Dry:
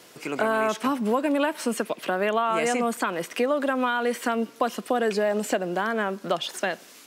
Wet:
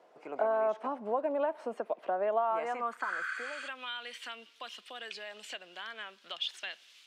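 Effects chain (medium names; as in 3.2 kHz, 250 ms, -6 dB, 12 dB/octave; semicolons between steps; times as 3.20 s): spectral replace 3.06–3.65 s, 1.1–9.8 kHz before; band-pass sweep 690 Hz -> 3.2 kHz, 2.38–3.80 s; trim -2 dB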